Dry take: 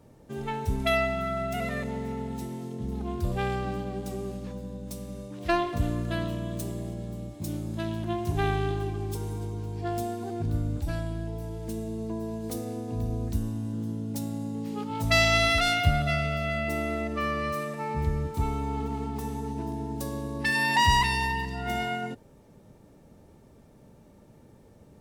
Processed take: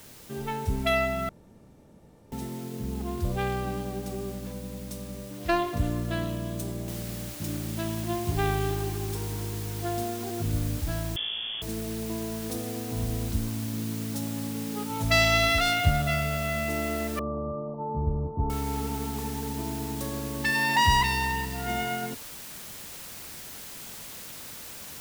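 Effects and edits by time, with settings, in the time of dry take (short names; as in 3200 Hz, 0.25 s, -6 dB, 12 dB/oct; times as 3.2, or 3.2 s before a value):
1.29–2.32 room tone
6.88 noise floor step -50 dB -42 dB
11.16–11.62 inverted band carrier 3400 Hz
17.19–18.5 steep low-pass 1100 Hz 72 dB/oct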